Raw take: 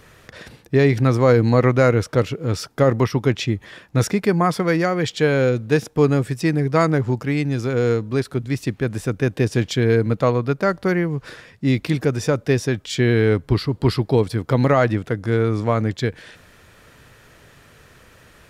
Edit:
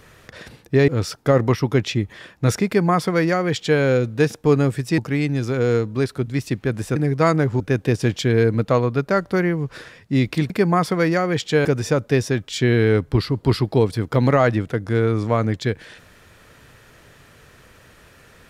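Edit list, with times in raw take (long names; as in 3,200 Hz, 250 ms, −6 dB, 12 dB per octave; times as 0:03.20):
0:00.88–0:02.40: remove
0:04.18–0:05.33: duplicate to 0:12.02
0:06.50–0:07.14: move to 0:09.12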